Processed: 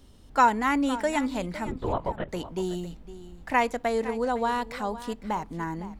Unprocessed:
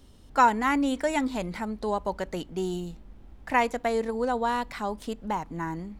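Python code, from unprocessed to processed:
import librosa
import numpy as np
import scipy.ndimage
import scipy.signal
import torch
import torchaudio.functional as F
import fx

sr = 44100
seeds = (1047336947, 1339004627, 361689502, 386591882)

y = fx.lpc_vocoder(x, sr, seeds[0], excitation='whisper', order=10, at=(1.66, 2.29))
y = y + 10.0 ** (-15.0 / 20.0) * np.pad(y, (int(509 * sr / 1000.0), 0))[:len(y)]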